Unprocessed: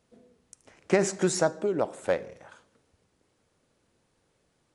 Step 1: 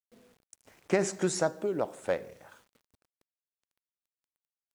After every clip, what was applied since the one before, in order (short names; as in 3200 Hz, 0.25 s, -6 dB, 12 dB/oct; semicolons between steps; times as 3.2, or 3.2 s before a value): requantised 10-bit, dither none; gain -3.5 dB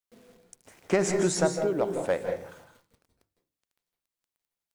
in parallel at -5.5 dB: soft clip -25 dBFS, distortion -10 dB; on the sum: reverb RT60 0.35 s, pre-delay 0.154 s, DRR 6 dB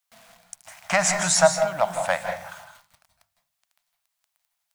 EQ curve 180 Hz 0 dB, 420 Hz -28 dB, 640 Hz +11 dB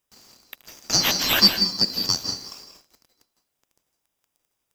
band-swap scrambler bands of 4000 Hz; in parallel at -9.5 dB: sample-rate reducer 2200 Hz, jitter 0%